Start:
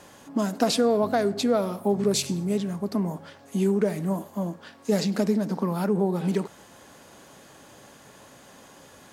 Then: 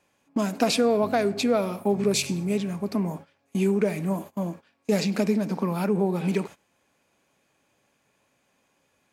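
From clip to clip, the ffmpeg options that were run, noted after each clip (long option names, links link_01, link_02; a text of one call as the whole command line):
ffmpeg -i in.wav -af "agate=range=-20dB:threshold=-38dB:ratio=16:detection=peak,equalizer=frequency=2400:width_type=o:width=0.27:gain=11.5" out.wav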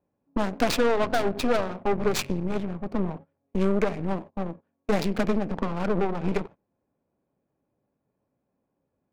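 ffmpeg -i in.wav -af "adynamicsmooth=sensitivity=4.5:basefreq=620,aeval=exprs='0.355*(cos(1*acos(clip(val(0)/0.355,-1,1)))-cos(1*PI/2))+0.0631*(cos(8*acos(clip(val(0)/0.355,-1,1)))-cos(8*PI/2))':channel_layout=same,volume=-2.5dB" out.wav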